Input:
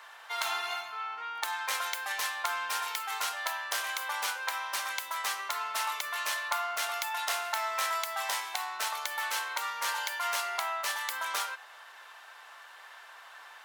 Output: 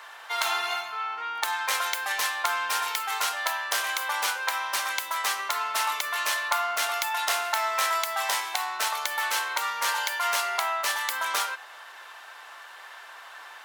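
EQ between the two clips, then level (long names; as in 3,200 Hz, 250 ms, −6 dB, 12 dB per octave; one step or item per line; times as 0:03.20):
parametric band 330 Hz +3 dB 0.84 octaves
+5.5 dB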